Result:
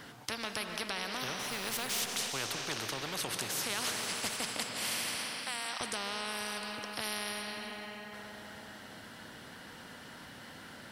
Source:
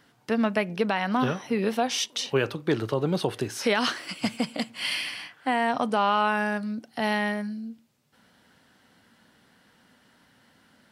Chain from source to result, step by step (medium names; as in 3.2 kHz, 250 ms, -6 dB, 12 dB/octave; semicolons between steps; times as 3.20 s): 1.39–2.01 s: companding laws mixed up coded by mu; 5.15–5.81 s: steep high-pass 760 Hz; reverberation RT60 2.5 s, pre-delay 105 ms, DRR 10.5 dB; spectrum-flattening compressor 4:1; trim -2 dB